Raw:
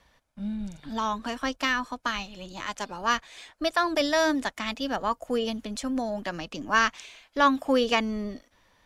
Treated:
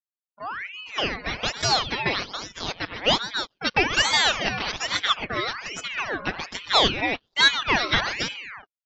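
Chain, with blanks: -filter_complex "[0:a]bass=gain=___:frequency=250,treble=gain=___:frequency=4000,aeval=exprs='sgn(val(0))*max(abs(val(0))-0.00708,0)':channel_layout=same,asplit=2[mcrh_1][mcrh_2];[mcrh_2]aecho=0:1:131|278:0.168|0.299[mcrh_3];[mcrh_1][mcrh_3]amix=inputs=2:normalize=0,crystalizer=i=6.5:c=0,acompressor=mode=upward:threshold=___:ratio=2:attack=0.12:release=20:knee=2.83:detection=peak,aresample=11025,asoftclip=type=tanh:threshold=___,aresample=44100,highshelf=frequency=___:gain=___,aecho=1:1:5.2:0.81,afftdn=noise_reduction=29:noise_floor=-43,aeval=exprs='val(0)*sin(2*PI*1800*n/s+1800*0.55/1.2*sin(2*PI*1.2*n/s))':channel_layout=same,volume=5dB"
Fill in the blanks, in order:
-9, -6, -31dB, -15dB, 4000, -10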